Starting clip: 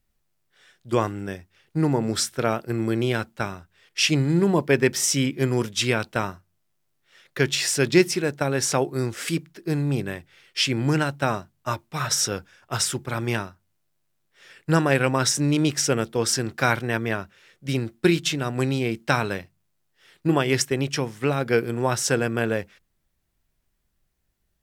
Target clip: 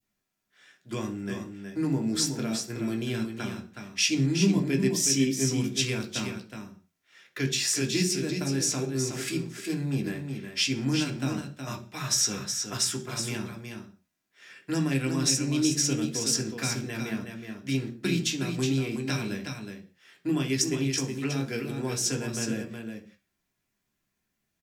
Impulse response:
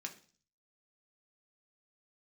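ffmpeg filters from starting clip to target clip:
-filter_complex "[0:a]acrossover=split=320|3000[s0][s1][s2];[s1]acompressor=threshold=0.0158:ratio=4[s3];[s0][s3][s2]amix=inputs=3:normalize=0[s4];[1:a]atrim=start_sample=2205,afade=t=out:st=0.25:d=0.01,atrim=end_sample=11466[s5];[s4][s5]afir=irnorm=-1:irlink=0,adynamicequalizer=threshold=0.00501:dfrequency=1700:dqfactor=0.83:tfrequency=1700:tqfactor=0.83:attack=5:release=100:ratio=0.375:range=2:mode=cutabove:tftype=bell,aecho=1:1:368:0.473,volume=1.12"

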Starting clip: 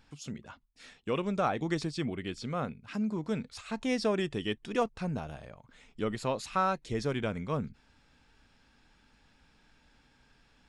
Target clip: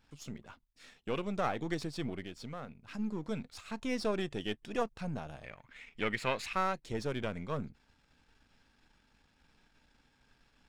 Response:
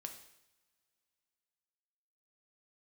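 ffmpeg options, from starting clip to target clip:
-filter_complex "[0:a]aeval=exprs='if(lt(val(0),0),0.447*val(0),val(0))':c=same,asplit=3[s0][s1][s2];[s0]afade=t=out:st=2.23:d=0.02[s3];[s1]acompressor=threshold=0.01:ratio=2.5,afade=t=in:st=2.23:d=0.02,afade=t=out:st=2.98:d=0.02[s4];[s2]afade=t=in:st=2.98:d=0.02[s5];[s3][s4][s5]amix=inputs=3:normalize=0,asettb=1/sr,asplit=3[s6][s7][s8];[s6]atrim=end=5.444[s9];[s7]atrim=start=5.44:end=6.53,asetpts=PTS-STARTPTS,afade=t=in:d=0.004:c=qsin,afade=t=out:st=1.086:d=0.004:c=qsin,equalizer=f=2200:w=1.3:g=15[s10];[s8]atrim=start=6.526[s11];[s9][s10]acrossfade=d=0.004:c1=hsin:c2=qsin[s12];[s12][s11]acrossfade=d=0.004:c1=qsin:c2=hsin,volume=0.841"

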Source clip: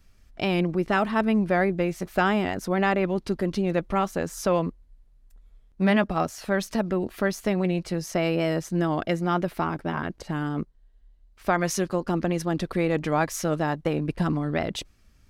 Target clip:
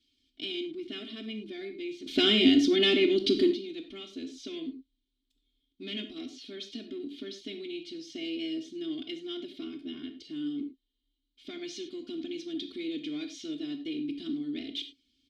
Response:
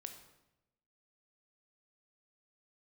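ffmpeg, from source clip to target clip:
-filter_complex "[0:a]acrossover=split=6600[s0][s1];[s1]acompressor=threshold=0.00158:ratio=4:attack=1:release=60[s2];[s0][s2]amix=inputs=2:normalize=0,highshelf=f=2700:t=q:w=3:g=10.5,aecho=1:1:2.8:0.95,asoftclip=type=tanh:threshold=0.211,asplit=3[s3][s4][s5];[s3]bandpass=f=270:t=q:w=8,volume=1[s6];[s4]bandpass=f=2290:t=q:w=8,volume=0.501[s7];[s5]bandpass=f=3010:t=q:w=8,volume=0.355[s8];[s6][s7][s8]amix=inputs=3:normalize=0,asettb=1/sr,asplit=3[s9][s10][s11];[s9]atrim=end=2.064[s12];[s10]atrim=start=2.06:end=3.51,asetpts=PTS-STARTPTS,afade=t=in:d=0.004:c=qsin,afade=t=out:st=1.446:d=0.004:c=qsin,aeval=exprs='0.531*sin(PI/2*3.98*val(0)/0.531)':c=same[s13];[s11]atrim=start=3.506[s14];[s12][s13]acrossfade=d=0.004:c1=hsin:c2=qsin[s15];[s15][s14]acrossfade=d=0.004:c1=qsin:c2=hsin[s16];[1:a]atrim=start_sample=2205,afade=t=out:st=0.16:d=0.01,atrim=end_sample=7497[s17];[s16][s17]afir=irnorm=-1:irlink=0,volume=1.58"

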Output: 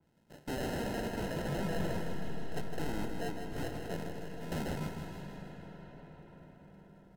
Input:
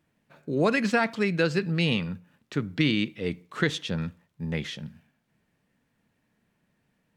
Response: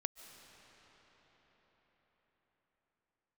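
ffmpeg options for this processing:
-filter_complex "[0:a]asettb=1/sr,asplit=3[s0][s1][s2];[s0]atrim=end=1.884[s3];[s1]atrim=start=1.88:end=4.52,asetpts=PTS-STARTPTS,afade=t=in:d=0.004:c=qsin,afade=t=out:st=2.636:d=0.004:c=qsin,acrossover=split=550 2200:gain=0.158 1 0.0891[s4][s5][s6];[s4][s5][s6]amix=inputs=3:normalize=0[s7];[s2]atrim=start=4.516[s8];[s3][s7]acrossfade=d=0.004:c1=hsin:c2=qsin[s9];[s9][s8]acrossfade=d=0.004:c1=qsin:c2=hsin,alimiter=limit=0.133:level=0:latency=1,acrusher=samples=38:mix=1:aa=0.000001,aeval=exprs='0.0251*(abs(mod(val(0)/0.0251+3,4)-2)-1)':c=same,aecho=1:1:158|316|474|632|790|948|1106:0.447|0.246|0.135|0.0743|0.0409|0.0225|0.0124[s10];[1:a]atrim=start_sample=2205,asetrate=31311,aresample=44100[s11];[s10][s11]afir=irnorm=-1:irlink=0,adynamicequalizer=threshold=0.00282:dfrequency=2600:dqfactor=0.7:tfrequency=2600:tqfactor=0.7:attack=5:release=100:ratio=0.375:range=2:mode=cutabove:tftype=highshelf,volume=1.12"

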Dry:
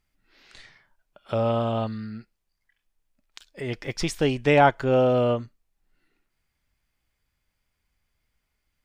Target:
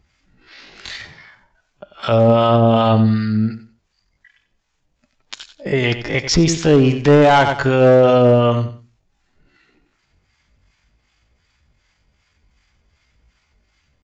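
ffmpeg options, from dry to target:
-filter_complex "[0:a]highpass=42,lowshelf=f=99:g=4.5,acrossover=split=800[s0][s1];[s0]aeval=exprs='val(0)*(1-0.7/2+0.7/2*cos(2*PI*4.2*n/s))':c=same[s2];[s1]aeval=exprs='val(0)*(1-0.7/2-0.7/2*cos(2*PI*4.2*n/s))':c=same[s3];[s2][s3]amix=inputs=2:normalize=0,aresample=16000,volume=7.94,asoftclip=hard,volume=0.126,aresample=44100,atempo=0.63,asplit=2[s4][s5];[s5]aecho=0:1:92|184|276:0.224|0.0537|0.0129[s6];[s4][s6]amix=inputs=2:normalize=0,alimiter=level_in=14.1:limit=0.891:release=50:level=0:latency=1,volume=0.596"

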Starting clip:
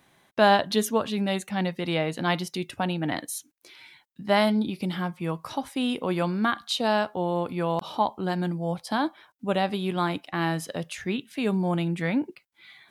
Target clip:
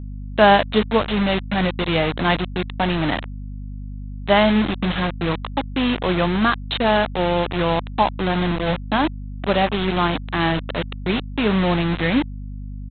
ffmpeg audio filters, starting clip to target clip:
-af "aresample=8000,acrusher=bits=4:mix=0:aa=0.000001,aresample=44100,aeval=exprs='val(0)+0.0158*(sin(2*PI*50*n/s)+sin(2*PI*2*50*n/s)/2+sin(2*PI*3*50*n/s)/3+sin(2*PI*4*50*n/s)/4+sin(2*PI*5*50*n/s)/5)':c=same,volume=2"

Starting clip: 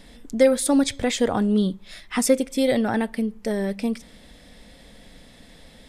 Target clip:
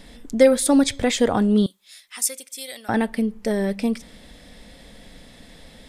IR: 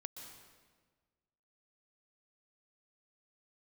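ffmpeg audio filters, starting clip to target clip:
-filter_complex "[0:a]asettb=1/sr,asplit=3[s0][s1][s2];[s0]atrim=end=1.664[s3];[s1]atrim=start=1.66:end=2.89,asetpts=PTS-STARTPTS,afade=t=in:d=0.004:c=qsin,afade=t=out:st=1.226:d=0.004:c=qsin,aderivative[s4];[s2]atrim=start=2.886[s5];[s3][s4]acrossfade=d=0.004:c1=hsin:c2=qsin[s6];[s6][s5]acrossfade=d=0.004:c1=qsin:c2=hsin,volume=1.33"

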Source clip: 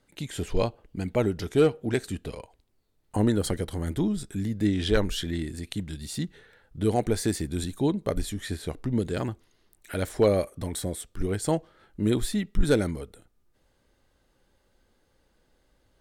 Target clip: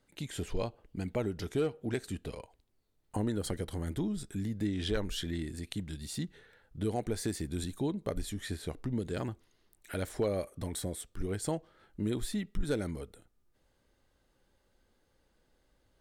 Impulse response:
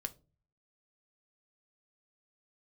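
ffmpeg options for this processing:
-af "acompressor=threshold=0.0447:ratio=2,volume=0.596"

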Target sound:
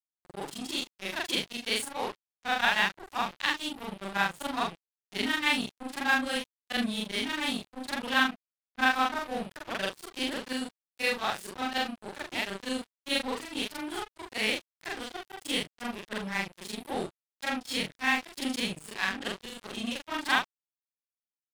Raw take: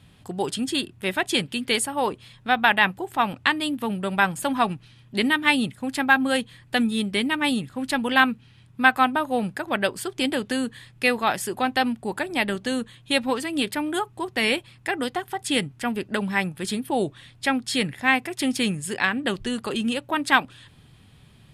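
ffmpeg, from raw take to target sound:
-af "afftfilt=real='re':imag='-im':win_size=4096:overlap=0.75,aeval=exprs='sgn(val(0))*max(abs(val(0))-0.0188,0)':c=same,adynamicequalizer=threshold=0.00562:dfrequency=4100:dqfactor=0.87:tfrequency=4100:tqfactor=0.87:attack=5:release=100:ratio=0.375:range=2.5:mode=boostabove:tftype=bell,volume=0.794"

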